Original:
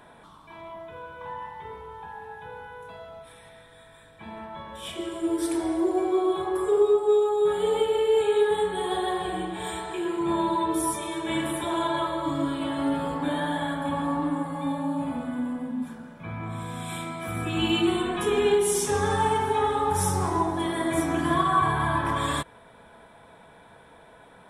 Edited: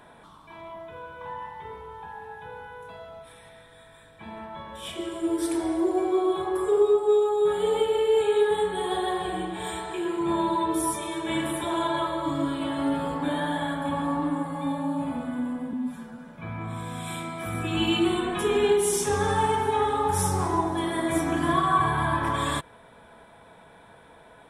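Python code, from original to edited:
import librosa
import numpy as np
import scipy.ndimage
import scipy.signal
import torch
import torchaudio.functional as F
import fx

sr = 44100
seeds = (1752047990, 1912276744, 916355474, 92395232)

y = fx.edit(x, sr, fx.stretch_span(start_s=15.73, length_s=0.36, factor=1.5), tone=tone)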